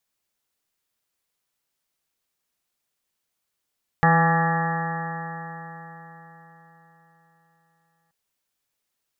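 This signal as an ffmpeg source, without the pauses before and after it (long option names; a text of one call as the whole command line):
ffmpeg -f lavfi -i "aevalsrc='0.133*pow(10,-3*t/4.35)*sin(2*PI*164.06*t)+0.0178*pow(10,-3*t/4.35)*sin(2*PI*328.5*t)+0.0473*pow(10,-3*t/4.35)*sin(2*PI*493.7*t)+0.0299*pow(10,-3*t/4.35)*sin(2*PI*660.03*t)+0.133*pow(10,-3*t/4.35)*sin(2*PI*827.85*t)+0.0168*pow(10,-3*t/4.35)*sin(2*PI*997.55*t)+0.0668*pow(10,-3*t/4.35)*sin(2*PI*1169.46*t)+0.0355*pow(10,-3*t/4.35)*sin(2*PI*1343.94*t)+0.0158*pow(10,-3*t/4.35)*sin(2*PI*1521.33*t)+0.075*pow(10,-3*t/4.35)*sin(2*PI*1701.97*t)+0.0501*pow(10,-3*t/4.35)*sin(2*PI*1886.17*t)':duration=4.08:sample_rate=44100" out.wav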